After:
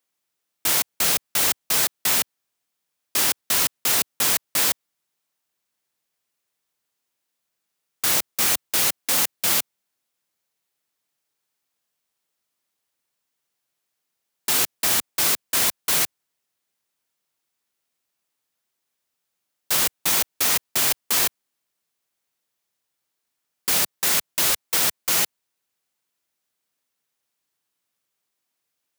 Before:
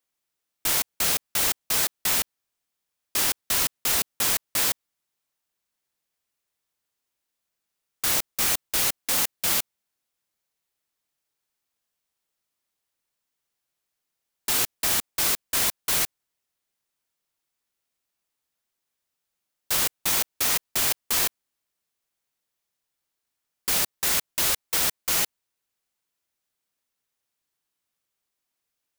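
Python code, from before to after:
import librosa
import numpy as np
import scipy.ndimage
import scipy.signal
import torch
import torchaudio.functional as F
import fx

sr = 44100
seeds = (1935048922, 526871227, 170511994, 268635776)

y = scipy.signal.sosfilt(scipy.signal.butter(2, 99.0, 'highpass', fs=sr, output='sos'), x)
y = F.gain(torch.from_numpy(y), 3.0).numpy()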